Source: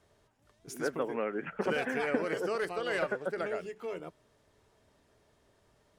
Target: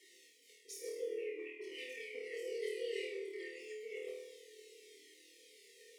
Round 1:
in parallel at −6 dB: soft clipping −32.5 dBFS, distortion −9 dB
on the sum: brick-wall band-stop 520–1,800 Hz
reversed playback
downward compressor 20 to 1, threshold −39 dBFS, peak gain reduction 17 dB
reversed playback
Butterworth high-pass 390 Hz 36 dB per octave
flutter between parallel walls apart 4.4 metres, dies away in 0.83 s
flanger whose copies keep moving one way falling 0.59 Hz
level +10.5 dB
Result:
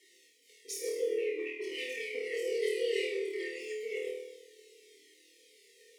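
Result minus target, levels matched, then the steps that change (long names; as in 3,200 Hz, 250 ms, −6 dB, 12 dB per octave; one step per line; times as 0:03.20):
downward compressor: peak gain reduction −10 dB; soft clipping: distortion +11 dB
change: soft clipping −22 dBFS, distortion −21 dB
change: downward compressor 20 to 1, threshold −48 dBFS, peak gain reduction 27 dB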